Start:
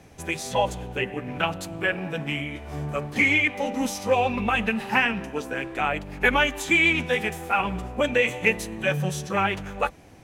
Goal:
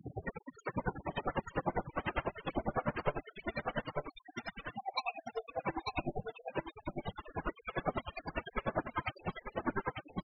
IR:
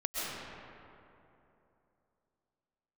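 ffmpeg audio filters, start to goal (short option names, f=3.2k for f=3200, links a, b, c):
-filter_complex "[0:a]asplit=3[a][b][c];[a]afade=t=out:st=2.52:d=0.02[d];[b]aemphasis=mode=reproduction:type=75kf,afade=t=in:st=2.52:d=0.02,afade=t=out:st=3.46:d=0.02[e];[c]afade=t=in:st=3.46:d=0.02[f];[d][e][f]amix=inputs=3:normalize=0,alimiter=limit=-17.5dB:level=0:latency=1:release=19,acompressor=mode=upward:threshold=-33dB:ratio=2.5,highpass=110,lowpass=6.8k,asettb=1/sr,asplit=3[g][h][i];[g]atrim=end=0.864[j];[h]atrim=start=0.86:end=1.51,asetpts=PTS-STARTPTS,afade=t=in:d=0.004:c=qsin,afade=t=out:st=0.646:d=0.004:c=qsin,equalizer=f=2k:w=5:g=-2.5[k];[i]atrim=start=1.506[l];[j][k]acrossfade=d=0.004:c1=hsin:c2=qsin[m];[m][l]acrossfade=d=0.004:c1=qsin:c2=hsin,asettb=1/sr,asplit=3[n][o][p];[n]atrim=end=4.754[q];[o]atrim=start=4.75:end=5.62,asetpts=PTS-STARTPTS,afade=t=in:d=0.004:c=qsin,afade=t=out:st=0.866:d=0.004:c=qsin,asplit=3[r][s][t];[r]bandpass=f=730:t=q:w=8,volume=0dB[u];[s]bandpass=f=1.09k:t=q:w=8,volume=-6dB[v];[t]bandpass=f=2.44k:t=q:w=8,volume=-9dB[w];[u][v][w]amix=inputs=3:normalize=0[x];[p]atrim=start=5.616[y];[q][x]acrossfade=d=0.004:c1=hsin:c2=qsin[z];[z][y]acrossfade=d=0.004:c1=qsin:c2=hsin,aeval=exprs='(mod(47.3*val(0)+1,2)-1)/47.3':c=same,asplit=2[aa][ab];[ab]adelay=49,volume=-4dB[ac];[aa][ac]amix=inputs=2:normalize=0,asplit=2[ad][ae];[1:a]atrim=start_sample=2205,atrim=end_sample=3087,lowpass=4.4k[af];[ae][af]afir=irnorm=-1:irlink=0,volume=-11dB[ag];[ad][ag]amix=inputs=2:normalize=0,afftfilt=real='re*gte(hypot(re,im),0.0355)':imag='im*gte(hypot(re,im),0.0355)':win_size=1024:overlap=0.75,aecho=1:1:890:0.631,aeval=exprs='val(0)*pow(10,-30*(0.5-0.5*cos(2*PI*10*n/s))/20)':c=same,volume=9.5dB"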